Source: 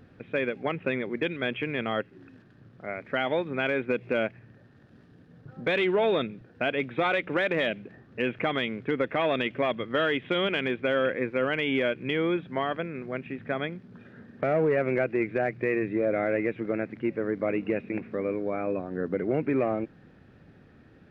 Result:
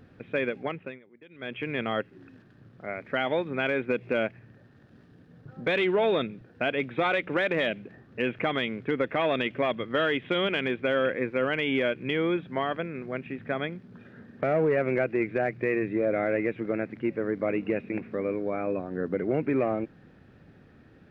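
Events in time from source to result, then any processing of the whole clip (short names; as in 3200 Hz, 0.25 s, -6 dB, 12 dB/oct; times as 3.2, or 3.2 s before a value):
0.55–1.74 dip -24 dB, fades 0.45 s linear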